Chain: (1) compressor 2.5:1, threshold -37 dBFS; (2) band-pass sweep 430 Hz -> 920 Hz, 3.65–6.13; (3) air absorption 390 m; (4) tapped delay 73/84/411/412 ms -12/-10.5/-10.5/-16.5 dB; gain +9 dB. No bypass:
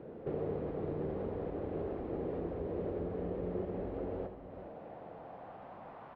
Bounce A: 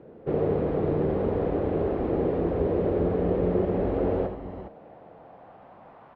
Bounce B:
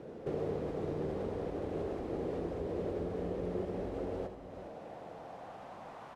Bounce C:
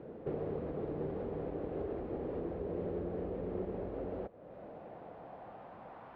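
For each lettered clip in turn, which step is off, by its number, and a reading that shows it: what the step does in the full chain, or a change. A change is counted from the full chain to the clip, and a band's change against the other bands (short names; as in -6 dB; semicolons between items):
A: 1, mean gain reduction 8.5 dB; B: 3, 2 kHz band +2.5 dB; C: 4, echo-to-direct -6.0 dB to none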